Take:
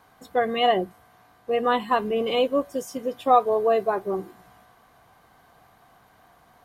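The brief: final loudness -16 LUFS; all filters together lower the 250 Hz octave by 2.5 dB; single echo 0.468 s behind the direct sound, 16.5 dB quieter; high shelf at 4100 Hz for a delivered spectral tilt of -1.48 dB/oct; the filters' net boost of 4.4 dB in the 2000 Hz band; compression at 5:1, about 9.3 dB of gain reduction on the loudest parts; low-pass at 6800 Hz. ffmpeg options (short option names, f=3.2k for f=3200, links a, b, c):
-af "lowpass=6.8k,equalizer=f=250:t=o:g=-3,equalizer=f=2k:t=o:g=6.5,highshelf=f=4.1k:g=-4.5,acompressor=threshold=-22dB:ratio=5,aecho=1:1:468:0.15,volume=12dB"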